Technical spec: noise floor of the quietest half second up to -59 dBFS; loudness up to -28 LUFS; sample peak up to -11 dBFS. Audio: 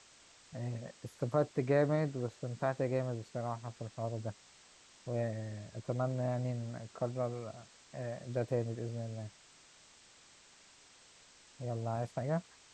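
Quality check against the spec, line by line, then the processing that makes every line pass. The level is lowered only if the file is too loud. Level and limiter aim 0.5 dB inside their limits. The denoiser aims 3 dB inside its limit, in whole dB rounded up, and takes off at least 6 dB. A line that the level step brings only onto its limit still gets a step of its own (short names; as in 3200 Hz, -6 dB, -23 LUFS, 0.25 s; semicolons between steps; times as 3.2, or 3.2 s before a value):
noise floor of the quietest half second -61 dBFS: OK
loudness -37.5 LUFS: OK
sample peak -17.5 dBFS: OK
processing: none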